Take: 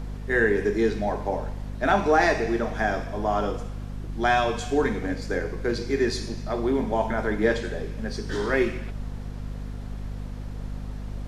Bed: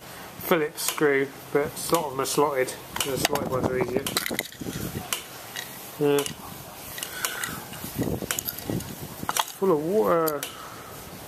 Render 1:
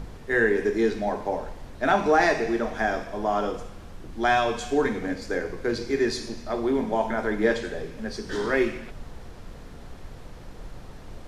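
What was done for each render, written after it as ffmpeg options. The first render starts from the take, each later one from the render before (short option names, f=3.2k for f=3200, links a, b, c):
-af "bandreject=f=50:t=h:w=4,bandreject=f=100:t=h:w=4,bandreject=f=150:t=h:w=4,bandreject=f=200:t=h:w=4,bandreject=f=250:t=h:w=4"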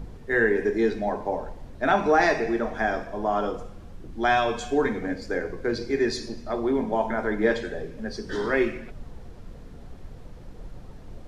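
-af "afftdn=nr=7:nf=-43"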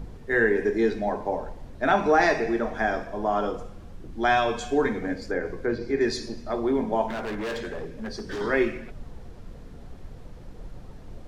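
-filter_complex "[0:a]asettb=1/sr,asplit=3[a][b][c];[a]atrim=end=5.304[d];[b]atrim=start=5.3:end=6.01,asetpts=PTS-STARTPTS,afade=t=in:d=0.004:c=qsin,afade=t=out:st=0.706:d=0.004:c=qsin,acrossover=split=2600[e][f];[f]acompressor=threshold=-54dB:ratio=4:attack=1:release=60[g];[e][g]amix=inputs=2:normalize=0[h];[c]atrim=start=6.006[i];[d][h]acrossfade=d=0.004:c1=hsin:c2=qsin[j];[j][i]acrossfade=d=0.004:c1=qsin:c2=hsin,asettb=1/sr,asplit=3[k][l][m];[k]atrim=end=7.084[n];[l]atrim=start=7.08:end=8.41,asetpts=PTS-STARTPTS,afade=t=in:d=0.004:c=qsin,afade=t=out:st=1.326:d=0.004:c=qsin,volume=28.5dB,asoftclip=hard,volume=-28.5dB[o];[m]atrim=start=8.406[p];[n][o]acrossfade=d=0.004:c1=hsin:c2=qsin[q];[q][p]acrossfade=d=0.004:c1=qsin:c2=hsin"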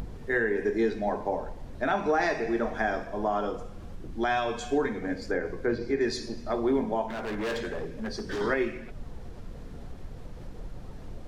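-af "acompressor=mode=upward:threshold=-35dB:ratio=2.5,alimiter=limit=-16.5dB:level=0:latency=1:release=454"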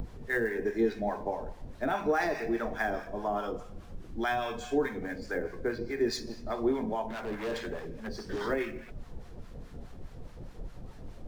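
-filter_complex "[0:a]acrossover=split=770[a][b];[a]aeval=exprs='val(0)*(1-0.7/2+0.7/2*cos(2*PI*4.8*n/s))':c=same[c];[b]aeval=exprs='val(0)*(1-0.7/2-0.7/2*cos(2*PI*4.8*n/s))':c=same[d];[c][d]amix=inputs=2:normalize=0,acrossover=split=370|1500[e][f][g];[g]acrusher=bits=4:mode=log:mix=0:aa=0.000001[h];[e][f][h]amix=inputs=3:normalize=0"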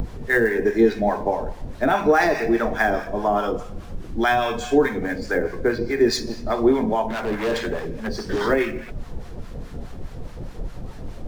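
-af "volume=11dB"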